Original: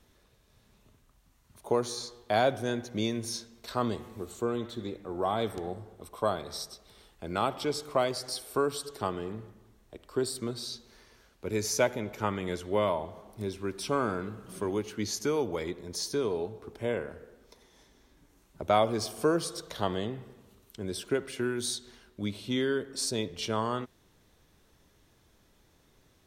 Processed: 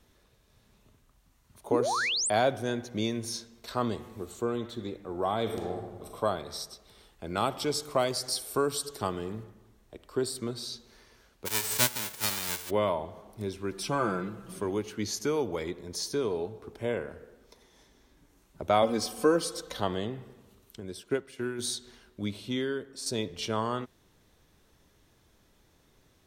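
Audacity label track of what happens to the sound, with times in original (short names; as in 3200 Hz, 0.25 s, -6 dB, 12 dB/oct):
1.710000	2.300000	painted sound rise 230–9700 Hz -29 dBFS
5.420000	6.160000	reverb throw, RT60 1.1 s, DRR 1.5 dB
7.370000	9.440000	tone controls bass +2 dB, treble +6 dB
11.450000	12.690000	spectral whitening exponent 0.1
13.710000	14.540000	comb 5.9 ms
18.820000	19.800000	comb 3.9 ms, depth 76%
20.800000	21.590000	upward expander, over -44 dBFS
22.340000	23.060000	fade out, to -8 dB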